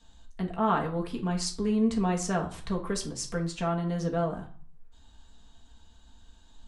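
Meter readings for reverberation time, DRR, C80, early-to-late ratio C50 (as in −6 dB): 0.45 s, −1.5 dB, 16.5 dB, 11.0 dB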